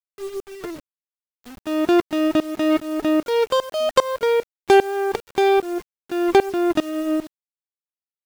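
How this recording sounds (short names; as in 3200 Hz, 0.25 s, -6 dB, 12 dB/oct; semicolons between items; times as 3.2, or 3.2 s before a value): tremolo saw up 2.5 Hz, depth 95%; a quantiser's noise floor 8-bit, dither none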